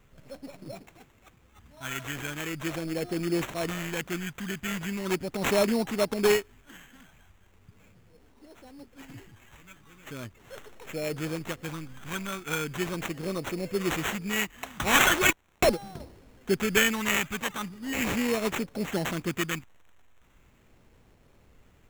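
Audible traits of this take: phasing stages 2, 0.39 Hz, lowest notch 490–1400 Hz; aliases and images of a low sample rate 4.8 kHz, jitter 0%

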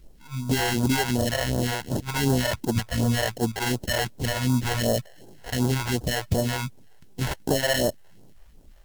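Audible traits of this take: aliases and images of a low sample rate 1.2 kHz, jitter 0%; phasing stages 2, 2.7 Hz, lowest notch 210–2200 Hz; a quantiser's noise floor 12-bit, dither triangular; AAC

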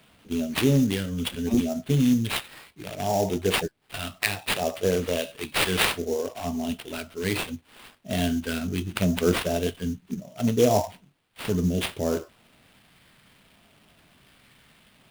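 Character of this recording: phasing stages 2, 0.67 Hz, lowest notch 780–1900 Hz; aliases and images of a low sample rate 6.4 kHz, jitter 20%

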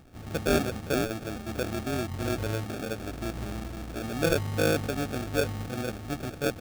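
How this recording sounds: aliases and images of a low sample rate 1 kHz, jitter 0%

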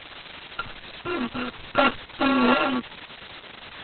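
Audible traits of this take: a buzz of ramps at a fixed pitch in blocks of 32 samples; chopped level 0.63 Hz, depth 60%, duty 60%; a quantiser's noise floor 6-bit, dither triangular; Opus

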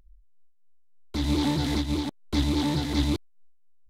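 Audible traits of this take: random flutter of the level

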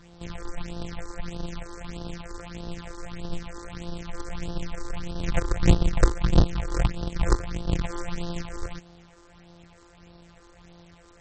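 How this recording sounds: a buzz of ramps at a fixed pitch in blocks of 256 samples; phasing stages 6, 1.6 Hz, lowest notch 170–2200 Hz; a quantiser's noise floor 10-bit, dither none; MP3

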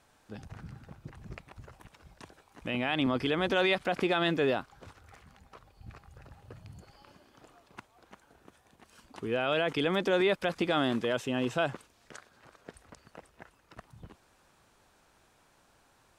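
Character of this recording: noise floor -66 dBFS; spectral tilt -3.5 dB/octave

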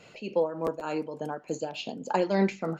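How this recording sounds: tremolo triangle 3.4 Hz, depth 70%

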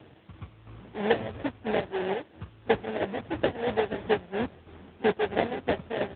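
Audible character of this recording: aliases and images of a low sample rate 1.2 kHz, jitter 20%; chopped level 3 Hz, depth 60%, duty 40%; a quantiser's noise floor 10-bit, dither triangular; AMR-NB

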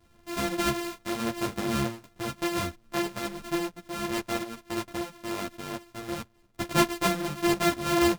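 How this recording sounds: a buzz of ramps at a fixed pitch in blocks of 128 samples; tremolo triangle 1.5 Hz, depth 55%; a shimmering, thickened sound

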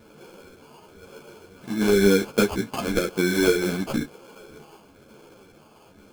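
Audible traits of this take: phasing stages 12, 1 Hz, lowest notch 600–1600 Hz; aliases and images of a low sample rate 1.9 kHz, jitter 0%; a shimmering, thickened sound

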